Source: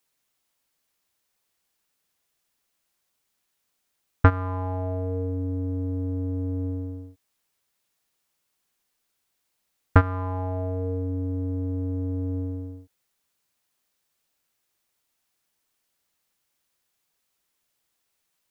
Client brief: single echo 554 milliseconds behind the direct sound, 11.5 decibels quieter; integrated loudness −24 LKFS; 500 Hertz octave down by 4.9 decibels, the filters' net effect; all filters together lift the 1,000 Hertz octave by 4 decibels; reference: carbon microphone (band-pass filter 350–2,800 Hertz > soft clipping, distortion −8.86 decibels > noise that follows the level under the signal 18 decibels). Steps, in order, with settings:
band-pass filter 350–2,800 Hz
parametric band 500 Hz −7 dB
parametric band 1,000 Hz +7 dB
single-tap delay 554 ms −11.5 dB
soft clipping −13.5 dBFS
noise that follows the level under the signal 18 dB
level +10.5 dB

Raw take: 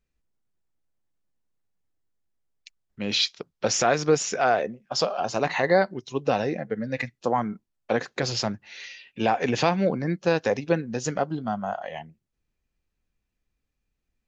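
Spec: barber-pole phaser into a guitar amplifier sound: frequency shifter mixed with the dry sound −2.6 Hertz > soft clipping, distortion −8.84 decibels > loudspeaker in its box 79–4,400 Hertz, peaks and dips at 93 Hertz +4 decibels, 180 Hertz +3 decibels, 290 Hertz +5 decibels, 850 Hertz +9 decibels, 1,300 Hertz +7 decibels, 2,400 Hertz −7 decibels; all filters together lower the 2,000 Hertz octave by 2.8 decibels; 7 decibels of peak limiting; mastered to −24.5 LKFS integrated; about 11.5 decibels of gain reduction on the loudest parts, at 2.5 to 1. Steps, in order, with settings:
parametric band 2,000 Hz −5.5 dB
downward compressor 2.5 to 1, threshold −34 dBFS
brickwall limiter −23.5 dBFS
frequency shifter mixed with the dry sound −2.6 Hz
soft clipping −38 dBFS
loudspeaker in its box 79–4,400 Hz, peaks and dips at 93 Hz +4 dB, 180 Hz +3 dB, 290 Hz +5 dB, 850 Hz +9 dB, 1,300 Hz +7 dB, 2,400 Hz −7 dB
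level +18 dB

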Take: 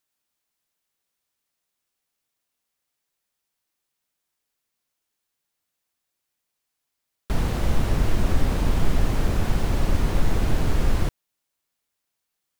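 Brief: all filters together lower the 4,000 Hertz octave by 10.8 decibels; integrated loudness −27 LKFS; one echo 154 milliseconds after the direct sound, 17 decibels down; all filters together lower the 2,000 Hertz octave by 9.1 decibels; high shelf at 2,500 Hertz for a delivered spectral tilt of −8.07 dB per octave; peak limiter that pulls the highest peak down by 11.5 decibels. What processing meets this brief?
parametric band 2,000 Hz −8 dB
high-shelf EQ 2,500 Hz −6 dB
parametric band 4,000 Hz −6 dB
brickwall limiter −18.5 dBFS
single-tap delay 154 ms −17 dB
level +4 dB

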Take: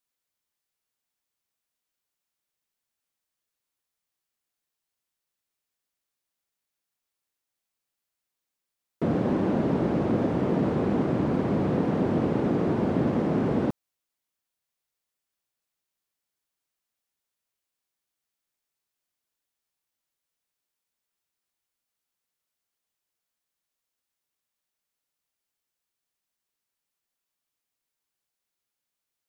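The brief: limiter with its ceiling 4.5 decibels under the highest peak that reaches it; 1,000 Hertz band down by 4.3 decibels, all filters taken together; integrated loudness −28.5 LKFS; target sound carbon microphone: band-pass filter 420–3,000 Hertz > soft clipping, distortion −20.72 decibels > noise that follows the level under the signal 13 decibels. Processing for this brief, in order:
parametric band 1,000 Hz −5.5 dB
brickwall limiter −17.5 dBFS
band-pass filter 420–3,000 Hz
soft clipping −25 dBFS
noise that follows the level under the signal 13 dB
level +6 dB

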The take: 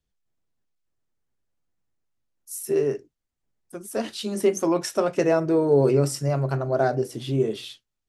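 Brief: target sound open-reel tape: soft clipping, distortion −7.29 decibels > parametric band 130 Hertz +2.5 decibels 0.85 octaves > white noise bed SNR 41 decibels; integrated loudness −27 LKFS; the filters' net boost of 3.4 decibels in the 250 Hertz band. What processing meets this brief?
parametric band 250 Hz +4.5 dB
soft clipping −22.5 dBFS
parametric band 130 Hz +2.5 dB 0.85 octaves
white noise bed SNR 41 dB
level +1 dB

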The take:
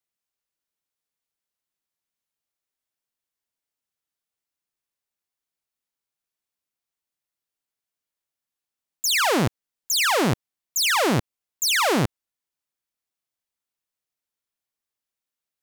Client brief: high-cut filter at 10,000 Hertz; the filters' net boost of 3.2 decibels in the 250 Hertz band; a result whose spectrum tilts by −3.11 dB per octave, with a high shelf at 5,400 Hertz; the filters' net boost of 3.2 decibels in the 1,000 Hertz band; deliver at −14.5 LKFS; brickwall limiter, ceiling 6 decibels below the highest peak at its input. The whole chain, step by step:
low-pass filter 10,000 Hz
parametric band 250 Hz +4 dB
parametric band 1,000 Hz +3.5 dB
high-shelf EQ 5,400 Hz +7.5 dB
level +7.5 dB
brickwall limiter −7.5 dBFS

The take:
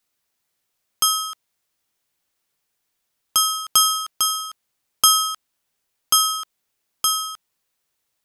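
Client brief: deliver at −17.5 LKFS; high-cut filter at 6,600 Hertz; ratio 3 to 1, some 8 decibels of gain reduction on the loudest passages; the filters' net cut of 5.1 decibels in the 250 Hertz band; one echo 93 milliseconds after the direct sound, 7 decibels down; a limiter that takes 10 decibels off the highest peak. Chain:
low-pass filter 6,600 Hz
parametric band 250 Hz −7 dB
downward compressor 3 to 1, threshold −23 dBFS
brickwall limiter −15.5 dBFS
single-tap delay 93 ms −7 dB
level +9.5 dB

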